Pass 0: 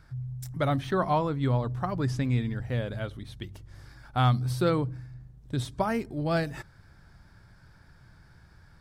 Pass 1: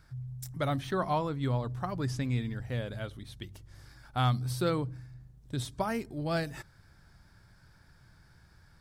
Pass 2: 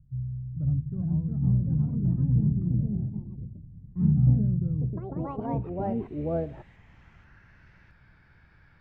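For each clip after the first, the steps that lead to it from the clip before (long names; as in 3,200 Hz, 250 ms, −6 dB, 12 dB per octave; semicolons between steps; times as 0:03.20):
high-shelf EQ 3,700 Hz +6.5 dB; level −4.5 dB
sub-octave generator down 1 octave, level −6 dB; low-pass filter sweep 140 Hz → 2,400 Hz, 0:05.19–0:07.69; delay with pitch and tempo change per echo 508 ms, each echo +3 semitones, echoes 3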